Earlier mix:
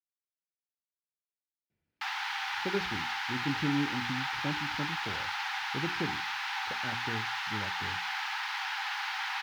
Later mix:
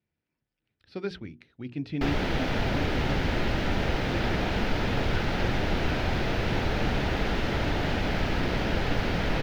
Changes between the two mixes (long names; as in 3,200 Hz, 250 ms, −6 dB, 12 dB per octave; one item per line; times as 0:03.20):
speech: entry −1.70 s
background: remove Chebyshev high-pass filter 770 Hz, order 10